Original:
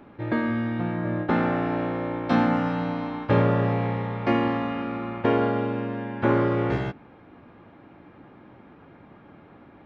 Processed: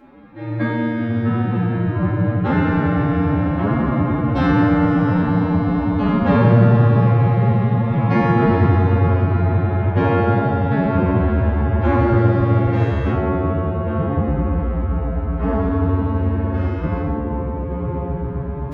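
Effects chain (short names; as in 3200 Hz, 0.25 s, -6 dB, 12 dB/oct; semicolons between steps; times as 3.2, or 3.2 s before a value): shoebox room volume 360 m³, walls furnished, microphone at 2.2 m; echoes that change speed 0.263 s, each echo -4 st, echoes 3; time stretch by phase-locked vocoder 1.9×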